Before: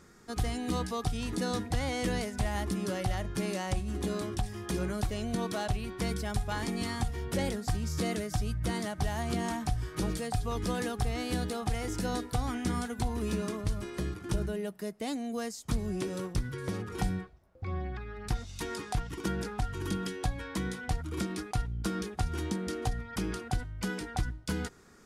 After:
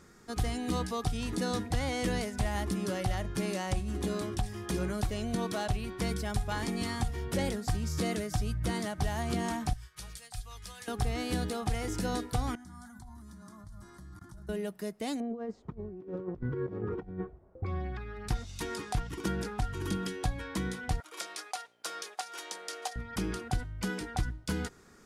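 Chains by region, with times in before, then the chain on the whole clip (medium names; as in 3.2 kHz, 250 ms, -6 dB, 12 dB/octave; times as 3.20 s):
9.73–10.88 s: amplifier tone stack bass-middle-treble 10-0-10 + upward expansion, over -54 dBFS
12.55–14.49 s: level held to a coarse grid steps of 23 dB + static phaser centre 1.1 kHz, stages 4
15.20–17.66 s: low-pass 1.1 kHz + peaking EQ 390 Hz +7.5 dB 0.6 oct + compressor with a negative ratio -36 dBFS, ratio -0.5
21.00–22.96 s: Chebyshev high-pass 580 Hz, order 3 + dynamic bell 5.7 kHz, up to +4 dB, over -55 dBFS, Q 0.73
whole clip: none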